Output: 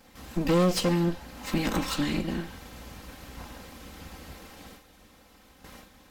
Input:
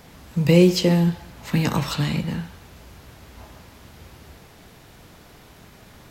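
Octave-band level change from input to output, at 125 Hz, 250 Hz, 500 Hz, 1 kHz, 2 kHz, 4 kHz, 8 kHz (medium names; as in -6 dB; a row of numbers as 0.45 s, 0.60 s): -10.0 dB, -6.5 dB, -6.5 dB, -1.0 dB, -4.5 dB, -5.0 dB, -2.5 dB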